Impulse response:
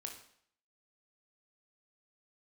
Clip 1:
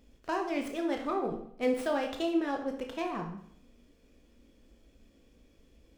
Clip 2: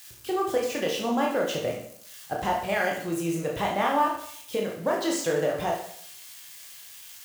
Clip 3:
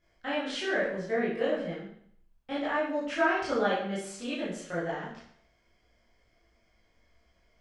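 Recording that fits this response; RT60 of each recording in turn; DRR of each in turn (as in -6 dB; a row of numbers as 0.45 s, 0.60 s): 1; 0.65 s, 0.65 s, 0.65 s; 2.5 dB, -1.5 dB, -10.0 dB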